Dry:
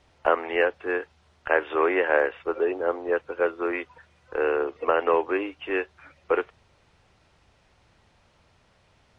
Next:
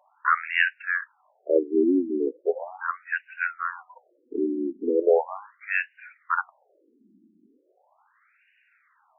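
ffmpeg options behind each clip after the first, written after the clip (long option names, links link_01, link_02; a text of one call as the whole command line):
ffmpeg -i in.wav -af "lowshelf=frequency=330:width_type=q:width=1.5:gain=9,afftfilt=real='re*between(b*sr/1024,260*pow(2100/260,0.5+0.5*sin(2*PI*0.38*pts/sr))/1.41,260*pow(2100/260,0.5+0.5*sin(2*PI*0.38*pts/sr))*1.41)':imag='im*between(b*sr/1024,260*pow(2100/260,0.5+0.5*sin(2*PI*0.38*pts/sr))/1.41,260*pow(2100/260,0.5+0.5*sin(2*PI*0.38*pts/sr))*1.41)':win_size=1024:overlap=0.75,volume=6.5dB" out.wav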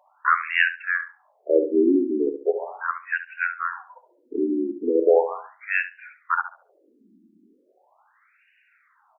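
ffmpeg -i in.wav -filter_complex "[0:a]asplit=2[link_01][link_02];[link_02]adelay=70,lowpass=frequency=1200:poles=1,volume=-8dB,asplit=2[link_03][link_04];[link_04]adelay=70,lowpass=frequency=1200:poles=1,volume=0.32,asplit=2[link_05][link_06];[link_06]adelay=70,lowpass=frequency=1200:poles=1,volume=0.32,asplit=2[link_07][link_08];[link_08]adelay=70,lowpass=frequency=1200:poles=1,volume=0.32[link_09];[link_01][link_03][link_05][link_07][link_09]amix=inputs=5:normalize=0,volume=2dB" out.wav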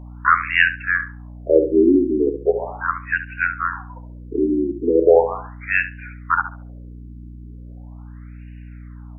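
ffmpeg -i in.wav -af "aeval=exprs='val(0)+0.01*(sin(2*PI*60*n/s)+sin(2*PI*2*60*n/s)/2+sin(2*PI*3*60*n/s)/3+sin(2*PI*4*60*n/s)/4+sin(2*PI*5*60*n/s)/5)':channel_layout=same,volume=4.5dB" out.wav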